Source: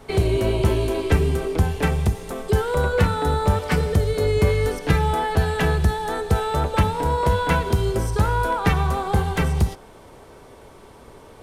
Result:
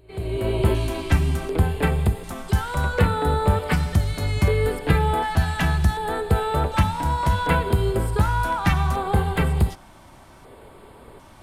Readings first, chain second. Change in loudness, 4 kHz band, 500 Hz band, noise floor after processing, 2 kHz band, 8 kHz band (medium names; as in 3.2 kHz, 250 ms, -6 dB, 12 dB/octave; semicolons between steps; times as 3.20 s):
-1.0 dB, -1.0 dB, -3.5 dB, -48 dBFS, 0.0 dB, -2.0 dB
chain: fade-in on the opening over 0.66 s; LFO notch square 0.67 Hz 450–5900 Hz; pre-echo 218 ms -23.5 dB